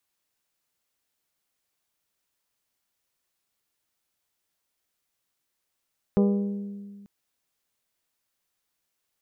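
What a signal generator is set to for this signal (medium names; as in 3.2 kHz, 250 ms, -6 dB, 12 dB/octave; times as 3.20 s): glass hit bell, lowest mode 201 Hz, modes 7, decay 1.90 s, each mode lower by 5 dB, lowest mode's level -17 dB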